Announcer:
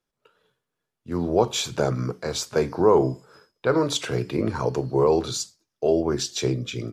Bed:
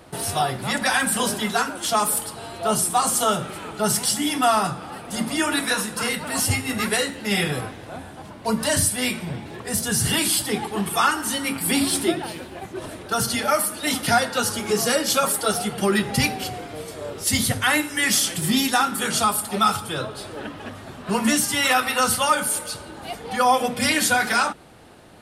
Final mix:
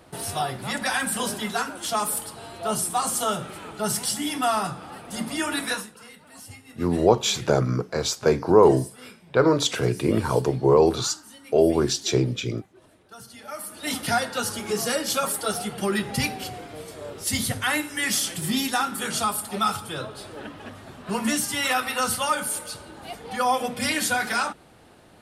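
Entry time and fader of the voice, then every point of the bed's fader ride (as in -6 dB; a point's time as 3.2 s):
5.70 s, +2.5 dB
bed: 5.74 s -4.5 dB
5.98 s -21.5 dB
13.34 s -21.5 dB
13.91 s -4.5 dB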